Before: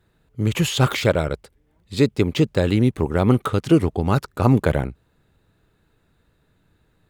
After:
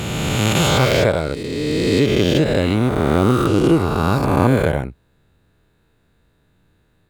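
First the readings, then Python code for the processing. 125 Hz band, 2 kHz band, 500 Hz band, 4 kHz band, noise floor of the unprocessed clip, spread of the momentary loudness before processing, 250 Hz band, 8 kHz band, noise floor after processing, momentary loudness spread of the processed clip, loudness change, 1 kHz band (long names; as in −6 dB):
+2.0 dB, +5.5 dB, +4.5 dB, +6.0 dB, −64 dBFS, 7 LU, +3.0 dB, +6.5 dB, −61 dBFS, 7 LU, +3.0 dB, +5.5 dB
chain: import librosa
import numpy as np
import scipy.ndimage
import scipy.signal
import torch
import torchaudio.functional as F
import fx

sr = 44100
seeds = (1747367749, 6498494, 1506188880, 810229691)

y = fx.spec_swells(x, sr, rise_s=2.9)
y = fx.notch(y, sr, hz=1300.0, q=27.0)
y = F.gain(torch.from_numpy(y), -1.5).numpy()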